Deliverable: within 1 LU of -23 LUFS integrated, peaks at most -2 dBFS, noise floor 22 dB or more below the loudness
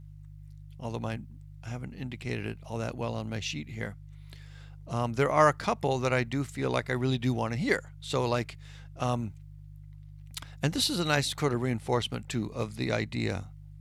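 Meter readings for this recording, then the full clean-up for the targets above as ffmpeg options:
hum 50 Hz; harmonics up to 150 Hz; hum level -44 dBFS; loudness -30.5 LUFS; peak -8.0 dBFS; loudness target -23.0 LUFS
-> -af "bandreject=f=50:t=h:w=4,bandreject=f=100:t=h:w=4,bandreject=f=150:t=h:w=4"
-af "volume=7.5dB,alimiter=limit=-2dB:level=0:latency=1"

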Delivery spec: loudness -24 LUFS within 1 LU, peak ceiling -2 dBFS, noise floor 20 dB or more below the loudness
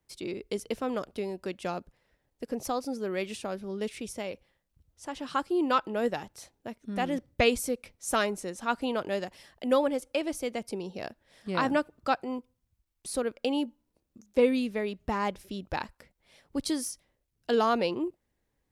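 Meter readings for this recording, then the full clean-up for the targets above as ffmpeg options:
loudness -31.0 LUFS; peak -11.0 dBFS; loudness target -24.0 LUFS
-> -af "volume=7dB"

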